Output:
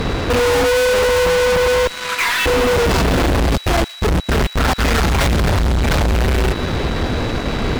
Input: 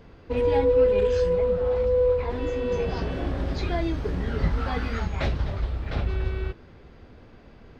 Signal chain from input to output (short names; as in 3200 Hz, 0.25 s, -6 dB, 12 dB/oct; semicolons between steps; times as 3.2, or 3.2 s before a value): 1.87–2.46 inverse Chebyshev high-pass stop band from 310 Hz, stop band 70 dB; in parallel at -0.5 dB: compressor, threshold -34 dBFS, peak gain reduction 17.5 dB; on the sum: fuzz box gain 41 dB, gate -48 dBFS; 3.54–4.78 step gate ".xx..xx.xx" 168 bpm -60 dB; whine 3900 Hz -35 dBFS; hard clip -16 dBFS, distortion -17 dB; on a send: thin delay 0.116 s, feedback 69%, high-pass 2000 Hz, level -15 dB; on the sum: gain +2 dB